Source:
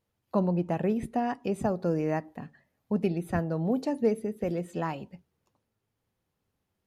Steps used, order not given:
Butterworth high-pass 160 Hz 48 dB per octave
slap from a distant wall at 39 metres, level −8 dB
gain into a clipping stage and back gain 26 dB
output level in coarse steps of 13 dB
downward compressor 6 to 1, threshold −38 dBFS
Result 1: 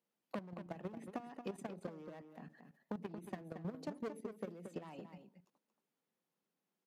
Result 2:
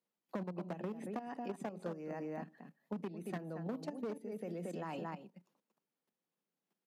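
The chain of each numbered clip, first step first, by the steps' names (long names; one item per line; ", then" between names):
gain into a clipping stage and back, then Butterworth high-pass, then downward compressor, then output level in coarse steps, then slap from a distant wall
slap from a distant wall, then output level in coarse steps, then gain into a clipping stage and back, then Butterworth high-pass, then downward compressor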